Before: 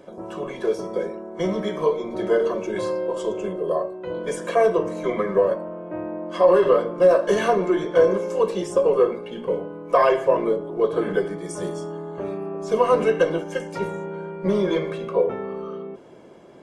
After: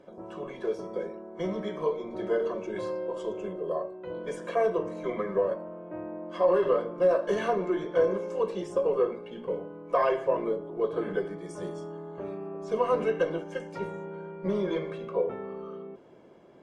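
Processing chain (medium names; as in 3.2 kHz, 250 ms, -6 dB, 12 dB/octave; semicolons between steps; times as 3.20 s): treble shelf 7.1 kHz -12 dB; trim -7.5 dB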